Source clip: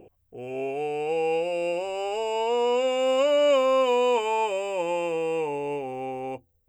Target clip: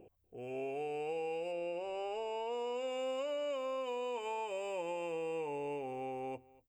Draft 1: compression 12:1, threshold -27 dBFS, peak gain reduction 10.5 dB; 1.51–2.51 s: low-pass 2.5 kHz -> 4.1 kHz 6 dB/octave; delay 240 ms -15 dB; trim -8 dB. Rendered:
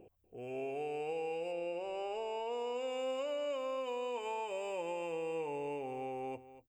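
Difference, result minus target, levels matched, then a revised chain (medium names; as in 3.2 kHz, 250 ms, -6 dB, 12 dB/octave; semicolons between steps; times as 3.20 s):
echo-to-direct +7.5 dB
compression 12:1, threshold -27 dBFS, peak gain reduction 10.5 dB; 1.51–2.51 s: low-pass 2.5 kHz -> 4.1 kHz 6 dB/octave; delay 240 ms -22.5 dB; trim -8 dB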